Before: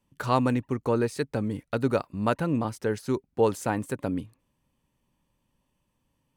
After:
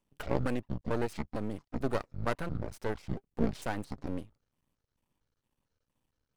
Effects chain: pitch shift switched off and on -12 st, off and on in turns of 226 ms; half-wave rectifier; trim -3 dB

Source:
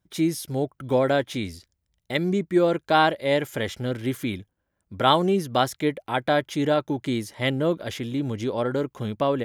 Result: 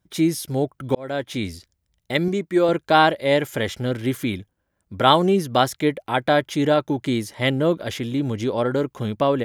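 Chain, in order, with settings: 0.95–1.44 s: fade in; 2.28–2.69 s: bass shelf 170 Hz -12 dB; trim +3.5 dB

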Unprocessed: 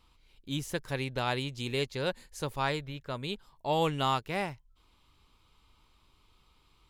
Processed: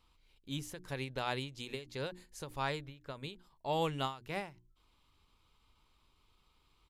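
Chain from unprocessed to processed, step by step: hum notches 60/120/180/240/300/360 Hz; resampled via 32 kHz; endings held to a fixed fall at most 150 dB/s; trim -5 dB

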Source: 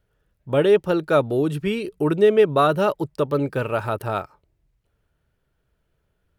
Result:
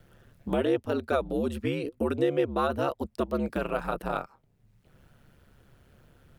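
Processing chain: ring modulator 70 Hz; three bands compressed up and down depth 70%; trim -5.5 dB

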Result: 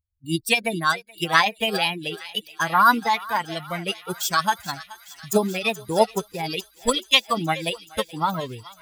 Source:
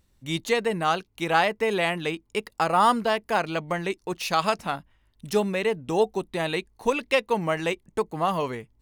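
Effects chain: expander on every frequency bin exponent 2; treble shelf 6.2 kHz +8.5 dB; thinning echo 426 ms, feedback 83%, high-pass 1.2 kHz, level -16 dB; formant shift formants +4 st; trim +6.5 dB

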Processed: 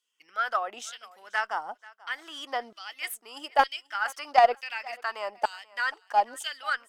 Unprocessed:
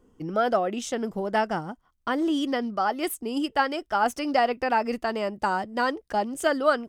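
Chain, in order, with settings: LFO high-pass saw down 1.1 Hz 580–3500 Hz; Chebyshev shaper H 3 -18 dB, 6 -38 dB, 8 -39 dB, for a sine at -5.5 dBFS; thinning echo 486 ms, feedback 17%, high-pass 440 Hz, level -21 dB

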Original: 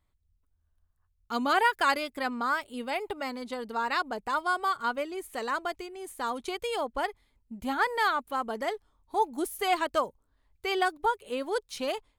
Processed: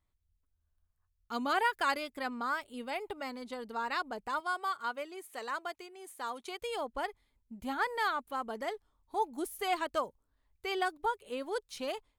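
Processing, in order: 4.40–6.62 s: high-pass 450 Hz 6 dB/octave; trim -5.5 dB

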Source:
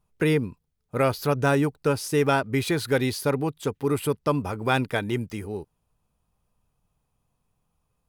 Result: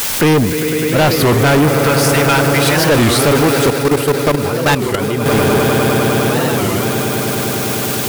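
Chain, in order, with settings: in parallel at -3.5 dB: word length cut 6-bit, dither triangular; 1.82–2.80 s: on the sum: Bessel high-pass 1.3 kHz, order 2; echo with a slow build-up 101 ms, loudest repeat 8, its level -14.5 dB; 3.70–5.26 s: level held to a coarse grid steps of 17 dB; overload inside the chain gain 21 dB; loudness maximiser +28.5 dB; warped record 33 1/3 rpm, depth 250 cents; trim -7.5 dB

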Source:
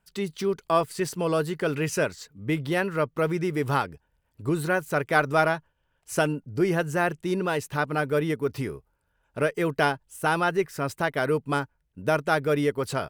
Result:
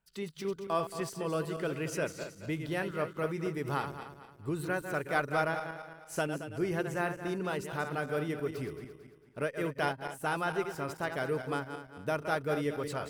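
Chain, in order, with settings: backward echo that repeats 112 ms, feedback 61%, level -8 dB; trim -9 dB

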